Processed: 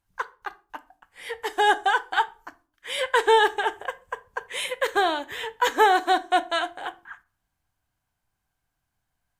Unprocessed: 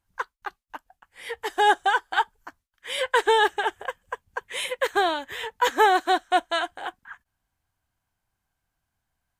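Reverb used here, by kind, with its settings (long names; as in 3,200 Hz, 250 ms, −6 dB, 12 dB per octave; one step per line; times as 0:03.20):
rectangular room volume 310 cubic metres, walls furnished, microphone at 0.39 metres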